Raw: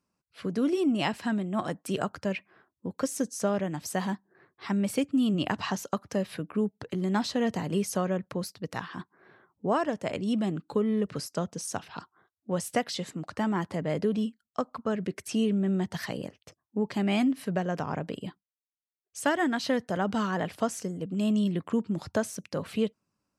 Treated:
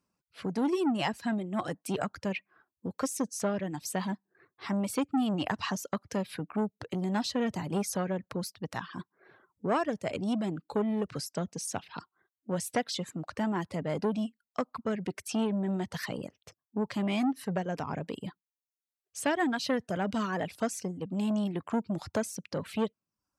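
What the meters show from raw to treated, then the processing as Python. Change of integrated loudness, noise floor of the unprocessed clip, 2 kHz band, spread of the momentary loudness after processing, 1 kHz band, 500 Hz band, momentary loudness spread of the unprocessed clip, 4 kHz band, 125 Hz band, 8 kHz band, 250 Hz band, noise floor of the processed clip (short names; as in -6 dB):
-2.5 dB, under -85 dBFS, -2.0 dB, 9 LU, -1.5 dB, -3.0 dB, 10 LU, -1.5 dB, -3.0 dB, -0.5 dB, -3.0 dB, under -85 dBFS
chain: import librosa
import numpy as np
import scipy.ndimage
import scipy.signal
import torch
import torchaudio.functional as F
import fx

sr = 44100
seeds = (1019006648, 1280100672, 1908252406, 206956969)

y = fx.dereverb_blind(x, sr, rt60_s=0.64)
y = fx.transformer_sat(y, sr, knee_hz=700.0)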